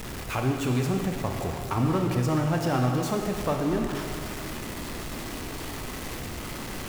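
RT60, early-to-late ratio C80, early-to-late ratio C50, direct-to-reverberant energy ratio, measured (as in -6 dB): 2.4 s, 4.5 dB, 3.5 dB, 2.0 dB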